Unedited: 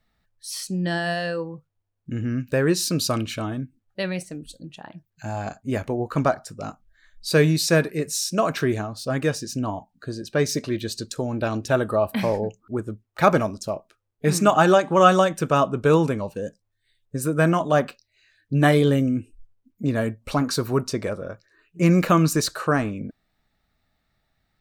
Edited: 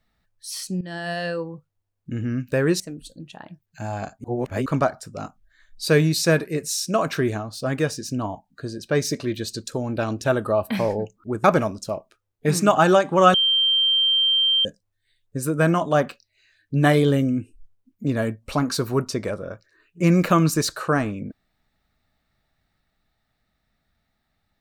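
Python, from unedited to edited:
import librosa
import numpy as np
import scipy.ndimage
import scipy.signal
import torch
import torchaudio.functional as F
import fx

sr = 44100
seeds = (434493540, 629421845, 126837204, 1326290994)

y = fx.edit(x, sr, fx.fade_in_from(start_s=0.81, length_s=0.45, floor_db=-15.0),
    fx.cut(start_s=2.8, length_s=1.44),
    fx.reverse_span(start_s=5.68, length_s=0.42),
    fx.cut(start_s=12.88, length_s=0.35),
    fx.bleep(start_s=15.13, length_s=1.31, hz=3150.0, db=-16.0), tone=tone)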